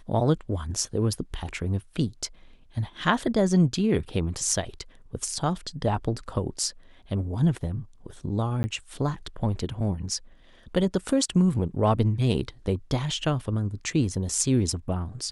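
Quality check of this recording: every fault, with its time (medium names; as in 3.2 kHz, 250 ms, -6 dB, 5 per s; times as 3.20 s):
8.63–8.64 s: dropout 10 ms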